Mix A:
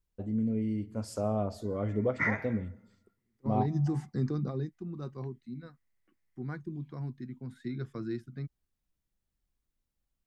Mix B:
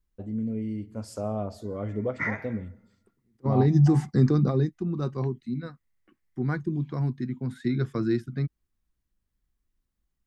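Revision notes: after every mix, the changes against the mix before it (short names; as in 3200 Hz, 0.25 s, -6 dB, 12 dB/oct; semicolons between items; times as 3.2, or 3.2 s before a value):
second voice +10.5 dB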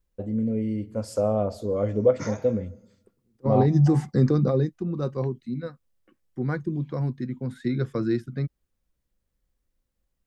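first voice +4.0 dB; background: remove synth low-pass 2000 Hz, resonance Q 9; master: add bell 520 Hz +10 dB 0.32 oct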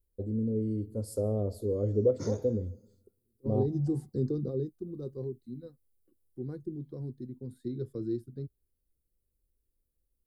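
second voice -6.5 dB; background +7.0 dB; master: add EQ curve 100 Hz 0 dB, 170 Hz -9 dB, 410 Hz +1 dB, 620 Hz -14 dB, 2400 Hz -26 dB, 4200 Hz -8 dB, 6200 Hz -13 dB, 10000 Hz +3 dB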